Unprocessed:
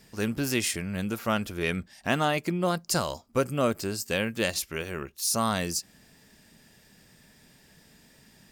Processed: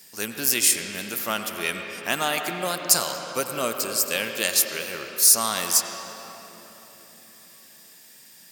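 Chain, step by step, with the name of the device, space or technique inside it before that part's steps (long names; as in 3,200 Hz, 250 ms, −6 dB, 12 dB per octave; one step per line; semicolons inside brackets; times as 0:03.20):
RIAA equalisation recording
filtered reverb send (on a send: high-pass filter 200 Hz 6 dB per octave + low-pass filter 4,200 Hz 12 dB per octave + convolution reverb RT60 4.0 s, pre-delay 83 ms, DRR 4.5 dB)
on the sum: high-pass filter 80 Hz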